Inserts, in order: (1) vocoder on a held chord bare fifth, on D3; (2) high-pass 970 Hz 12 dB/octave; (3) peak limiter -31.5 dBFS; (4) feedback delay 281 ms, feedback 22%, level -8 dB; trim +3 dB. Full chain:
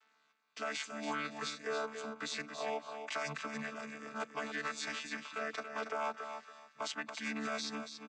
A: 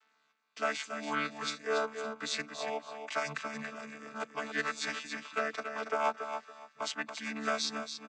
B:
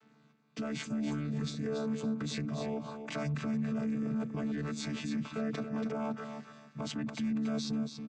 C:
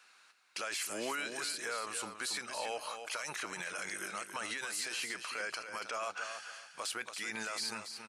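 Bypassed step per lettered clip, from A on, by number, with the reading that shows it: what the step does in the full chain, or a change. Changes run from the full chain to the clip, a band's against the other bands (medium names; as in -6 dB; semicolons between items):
3, mean gain reduction 1.5 dB; 2, 125 Hz band +20.5 dB; 1, 8 kHz band +10.0 dB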